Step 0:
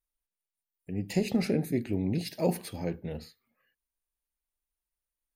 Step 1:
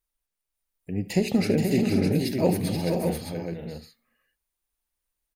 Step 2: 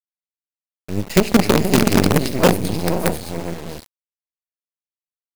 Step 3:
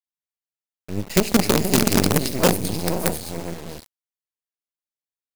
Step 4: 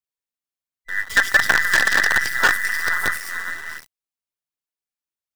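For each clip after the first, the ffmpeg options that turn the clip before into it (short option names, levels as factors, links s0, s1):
-af "aecho=1:1:73|242|256|478|525|609:0.15|0.133|0.119|0.501|0.282|0.531,volume=1.68"
-af "acrusher=bits=4:dc=4:mix=0:aa=0.000001,volume=2.51"
-af "adynamicequalizer=threshold=0.0158:dfrequency=4100:dqfactor=0.7:tfrequency=4100:tqfactor=0.7:attack=5:release=100:ratio=0.375:range=3.5:mode=boostabove:tftype=highshelf,volume=0.631"
-filter_complex "[0:a]afftfilt=real='real(if(between(b,1,1012),(2*floor((b-1)/92)+1)*92-b,b),0)':imag='imag(if(between(b,1,1012),(2*floor((b-1)/92)+1)*92-b,b),0)*if(between(b,1,1012),-1,1)':win_size=2048:overlap=0.75,aphaser=in_gain=1:out_gain=1:delay=4.6:decay=0.32:speed=1.3:type=triangular,acrossover=split=6800[s0][s1];[s1]acompressor=threshold=0.0355:ratio=4:attack=1:release=60[s2];[s0][s2]amix=inputs=2:normalize=0"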